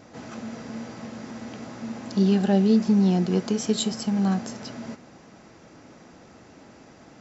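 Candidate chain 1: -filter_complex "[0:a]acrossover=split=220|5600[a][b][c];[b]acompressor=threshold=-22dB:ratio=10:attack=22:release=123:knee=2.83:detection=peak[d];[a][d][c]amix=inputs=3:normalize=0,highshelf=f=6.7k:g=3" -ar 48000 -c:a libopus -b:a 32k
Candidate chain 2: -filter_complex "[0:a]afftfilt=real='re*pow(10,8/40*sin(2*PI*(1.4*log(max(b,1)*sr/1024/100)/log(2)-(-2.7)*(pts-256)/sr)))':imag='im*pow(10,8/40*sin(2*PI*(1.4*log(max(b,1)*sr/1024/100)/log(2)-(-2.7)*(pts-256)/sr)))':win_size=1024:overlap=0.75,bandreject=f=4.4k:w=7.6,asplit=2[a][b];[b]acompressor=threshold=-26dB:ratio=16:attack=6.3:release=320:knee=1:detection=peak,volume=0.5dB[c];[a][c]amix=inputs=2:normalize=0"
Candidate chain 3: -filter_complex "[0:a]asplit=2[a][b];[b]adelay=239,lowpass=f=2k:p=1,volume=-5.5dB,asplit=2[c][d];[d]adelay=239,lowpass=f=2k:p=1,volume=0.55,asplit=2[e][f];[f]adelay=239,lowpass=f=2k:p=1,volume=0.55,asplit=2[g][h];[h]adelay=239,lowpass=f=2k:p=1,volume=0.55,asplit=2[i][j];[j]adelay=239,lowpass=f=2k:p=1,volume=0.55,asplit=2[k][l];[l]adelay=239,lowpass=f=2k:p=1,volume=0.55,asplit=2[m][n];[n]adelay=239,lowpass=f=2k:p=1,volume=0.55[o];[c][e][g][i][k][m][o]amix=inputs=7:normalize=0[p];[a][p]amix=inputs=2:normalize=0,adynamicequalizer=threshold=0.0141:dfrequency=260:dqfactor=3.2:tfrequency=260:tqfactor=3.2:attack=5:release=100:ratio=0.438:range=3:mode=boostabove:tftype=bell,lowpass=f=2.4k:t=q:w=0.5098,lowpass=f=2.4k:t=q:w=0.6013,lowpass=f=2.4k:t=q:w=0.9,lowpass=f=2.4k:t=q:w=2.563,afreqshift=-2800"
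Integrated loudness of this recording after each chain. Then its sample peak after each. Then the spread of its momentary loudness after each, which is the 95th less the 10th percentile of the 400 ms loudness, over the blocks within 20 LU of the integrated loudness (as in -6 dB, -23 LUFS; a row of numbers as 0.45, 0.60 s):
-24.0, -22.0, -17.0 LUFS; -11.0, -7.0, -6.5 dBFS; 18, 15, 20 LU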